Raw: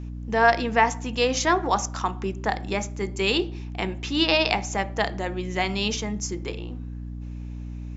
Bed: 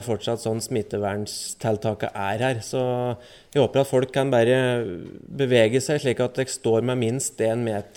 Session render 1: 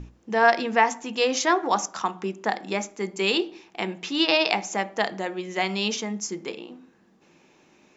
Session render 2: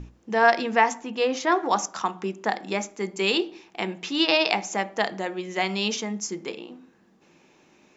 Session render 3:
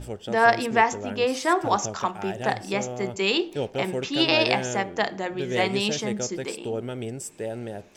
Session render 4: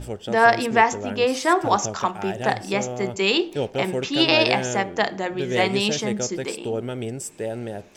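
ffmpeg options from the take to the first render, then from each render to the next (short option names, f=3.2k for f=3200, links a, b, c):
-af "bandreject=f=60:t=h:w=6,bandreject=f=120:t=h:w=6,bandreject=f=180:t=h:w=6,bandreject=f=240:t=h:w=6,bandreject=f=300:t=h:w=6"
-filter_complex "[0:a]asettb=1/sr,asplit=3[a][b][c];[a]atrim=end=1.014[d];[b]atrim=start=1.01:end=1.52,asetpts=PTS-STARTPTS,afade=t=in:d=0.004:c=qsin,afade=t=out:st=0.506:d=0.004:c=qsin,lowpass=f=2.2k:p=1[e];[c]atrim=start=1.516[f];[d][e]acrossfade=d=0.004:c1=hsin:c2=qsin[g];[g][f]acrossfade=d=0.004:c1=qsin:c2=hsin"
-filter_complex "[1:a]volume=-9.5dB[a];[0:a][a]amix=inputs=2:normalize=0"
-af "volume=3dB,alimiter=limit=-3dB:level=0:latency=1"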